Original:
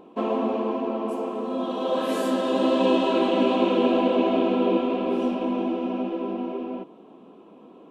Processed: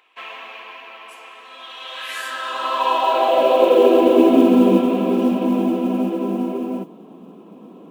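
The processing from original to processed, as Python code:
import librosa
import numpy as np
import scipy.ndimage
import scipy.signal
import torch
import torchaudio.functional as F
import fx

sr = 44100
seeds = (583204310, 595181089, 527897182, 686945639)

y = fx.filter_sweep_highpass(x, sr, from_hz=2000.0, to_hz=170.0, start_s=2.07, end_s=4.92, q=2.9)
y = fx.mod_noise(y, sr, seeds[0], snr_db=34)
y = F.gain(torch.from_numpy(y), 3.5).numpy()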